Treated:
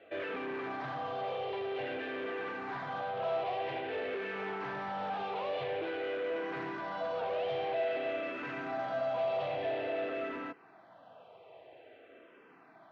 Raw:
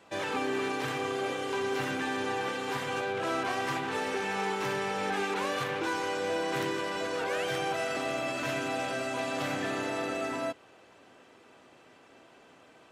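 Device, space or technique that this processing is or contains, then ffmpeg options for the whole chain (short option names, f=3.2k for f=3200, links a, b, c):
barber-pole phaser into a guitar amplifier: -filter_complex "[0:a]asplit=2[a][b];[b]afreqshift=-0.5[c];[a][c]amix=inputs=2:normalize=1,asoftclip=type=tanh:threshold=-36dB,highpass=91,equalizer=f=240:t=q:w=4:g=-4,equalizer=f=470:t=q:w=4:g=5,equalizer=f=670:t=q:w=4:g=10,lowpass=f=3.4k:w=0.5412,lowpass=f=3.4k:w=1.3066"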